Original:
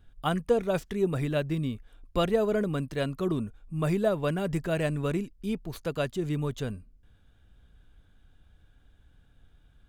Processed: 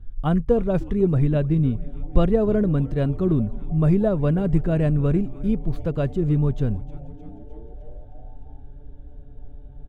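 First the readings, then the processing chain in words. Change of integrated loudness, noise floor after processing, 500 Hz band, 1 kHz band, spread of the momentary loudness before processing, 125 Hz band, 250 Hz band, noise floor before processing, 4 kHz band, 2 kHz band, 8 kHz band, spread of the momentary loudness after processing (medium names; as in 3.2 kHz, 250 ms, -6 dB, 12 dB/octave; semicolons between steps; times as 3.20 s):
+7.5 dB, -41 dBFS, +4.5 dB, +1.0 dB, 8 LU, +11.0 dB, +9.0 dB, -61 dBFS, no reading, -3.0 dB, under -10 dB, 7 LU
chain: tilt EQ -4 dB/octave; on a send: frequency-shifting echo 306 ms, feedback 64%, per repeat -150 Hz, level -18.5 dB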